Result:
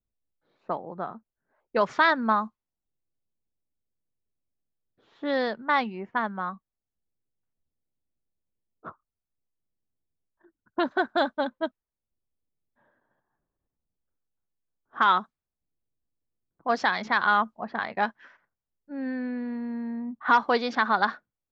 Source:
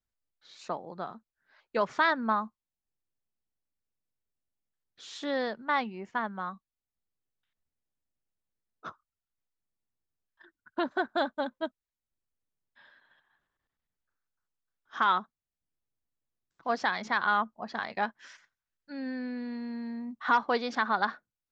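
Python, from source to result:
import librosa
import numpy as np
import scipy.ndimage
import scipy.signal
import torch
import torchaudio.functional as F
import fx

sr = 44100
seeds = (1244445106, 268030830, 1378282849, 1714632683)

y = fx.env_lowpass(x, sr, base_hz=560.0, full_db=-25.0)
y = y * librosa.db_to_amplitude(4.5)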